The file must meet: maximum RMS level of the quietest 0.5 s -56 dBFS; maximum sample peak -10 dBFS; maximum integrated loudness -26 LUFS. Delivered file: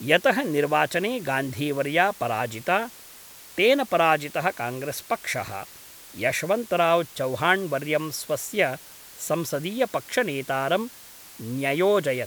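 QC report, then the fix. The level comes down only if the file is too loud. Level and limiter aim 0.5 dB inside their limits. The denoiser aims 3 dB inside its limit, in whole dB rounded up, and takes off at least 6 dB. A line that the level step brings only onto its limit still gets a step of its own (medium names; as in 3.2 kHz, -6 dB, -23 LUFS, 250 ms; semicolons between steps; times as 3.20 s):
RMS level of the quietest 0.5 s -46 dBFS: fail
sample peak -3.5 dBFS: fail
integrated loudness -24.5 LUFS: fail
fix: noise reduction 11 dB, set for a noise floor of -46 dBFS; trim -2 dB; peak limiter -10.5 dBFS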